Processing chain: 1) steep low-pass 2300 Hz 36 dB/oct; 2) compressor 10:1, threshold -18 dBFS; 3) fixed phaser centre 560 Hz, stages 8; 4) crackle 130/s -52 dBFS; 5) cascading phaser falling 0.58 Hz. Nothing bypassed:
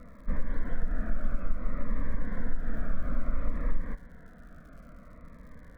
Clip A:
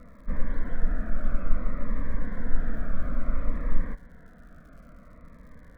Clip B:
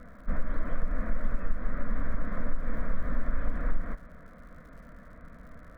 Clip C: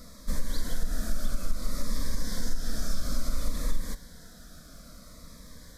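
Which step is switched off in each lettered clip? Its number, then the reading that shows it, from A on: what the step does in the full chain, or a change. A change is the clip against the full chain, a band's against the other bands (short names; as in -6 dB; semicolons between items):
2, mean gain reduction 2.0 dB; 5, 125 Hz band -2.5 dB; 1, momentary loudness spread change -2 LU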